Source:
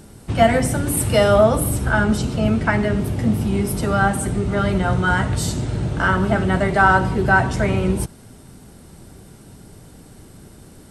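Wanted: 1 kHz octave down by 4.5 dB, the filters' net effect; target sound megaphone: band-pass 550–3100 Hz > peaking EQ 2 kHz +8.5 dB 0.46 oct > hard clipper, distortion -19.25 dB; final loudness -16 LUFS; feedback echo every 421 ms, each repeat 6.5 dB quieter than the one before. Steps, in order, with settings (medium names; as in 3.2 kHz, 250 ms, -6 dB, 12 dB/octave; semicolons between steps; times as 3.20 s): band-pass 550–3100 Hz; peaking EQ 1 kHz -6.5 dB; peaking EQ 2 kHz +8.5 dB 0.46 oct; feedback delay 421 ms, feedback 47%, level -6.5 dB; hard clipper -12 dBFS; trim +7 dB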